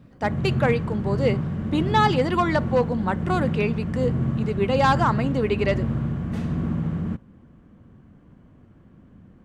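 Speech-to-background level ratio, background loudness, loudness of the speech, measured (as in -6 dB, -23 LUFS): 2.0 dB, -26.5 LUFS, -24.5 LUFS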